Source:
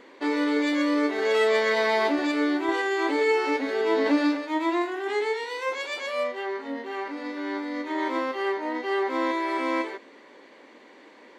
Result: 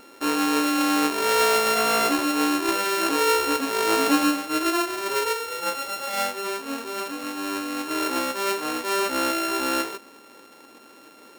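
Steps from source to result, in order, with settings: sample sorter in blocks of 32 samples; low shelf 110 Hz +5.5 dB; gain +1.5 dB

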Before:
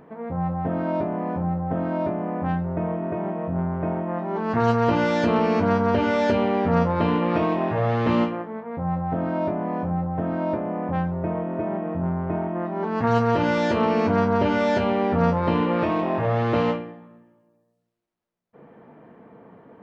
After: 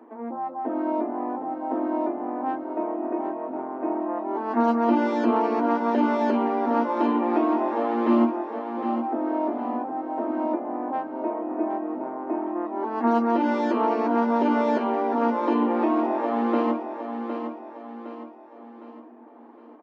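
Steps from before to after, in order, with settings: reverb removal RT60 0.54 s; rippled Chebyshev high-pass 230 Hz, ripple 9 dB; low shelf 480 Hz +10.5 dB; on a send: feedback echo 0.761 s, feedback 44%, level -8 dB

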